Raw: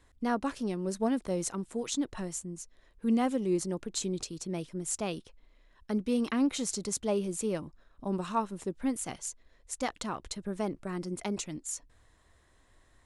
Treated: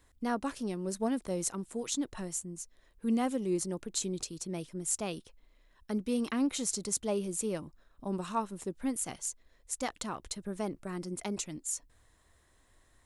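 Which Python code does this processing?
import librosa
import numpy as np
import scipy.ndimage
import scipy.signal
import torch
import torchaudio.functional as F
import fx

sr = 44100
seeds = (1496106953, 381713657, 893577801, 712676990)

y = fx.high_shelf(x, sr, hz=9300.0, db=11.0)
y = F.gain(torch.from_numpy(y), -2.5).numpy()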